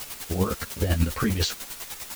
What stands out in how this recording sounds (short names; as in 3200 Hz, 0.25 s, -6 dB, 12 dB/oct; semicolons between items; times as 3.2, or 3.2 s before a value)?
a quantiser's noise floor 6-bit, dither triangular; chopped level 10 Hz, depth 60%, duty 30%; a shimmering, thickened sound